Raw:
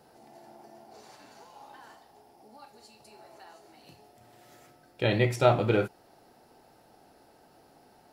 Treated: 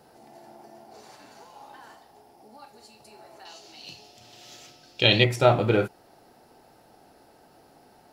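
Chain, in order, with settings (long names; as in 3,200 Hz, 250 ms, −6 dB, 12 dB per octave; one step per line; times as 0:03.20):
0:03.45–0:05.24: flat-topped bell 4,200 Hz +13.5 dB
level +3 dB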